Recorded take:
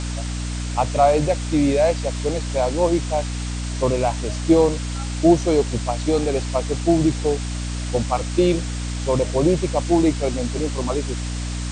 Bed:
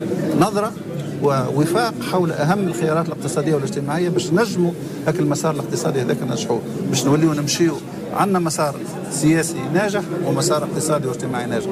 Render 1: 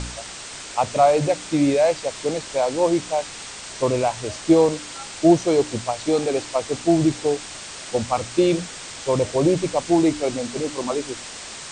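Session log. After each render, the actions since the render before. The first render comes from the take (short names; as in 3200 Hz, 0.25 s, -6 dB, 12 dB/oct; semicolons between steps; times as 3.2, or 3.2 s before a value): de-hum 60 Hz, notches 5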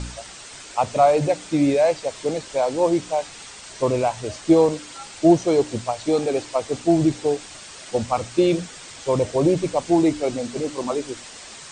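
denoiser 6 dB, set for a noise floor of -36 dBFS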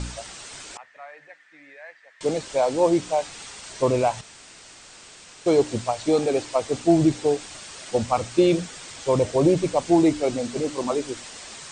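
0.77–2.21 band-pass 1800 Hz, Q 11; 4.21–5.46 room tone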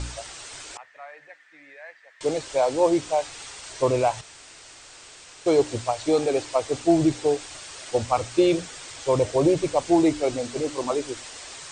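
bell 200 Hz -12.5 dB 0.46 oct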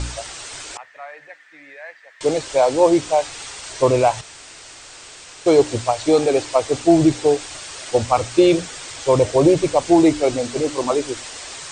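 gain +6 dB; limiter -3 dBFS, peak gain reduction 1 dB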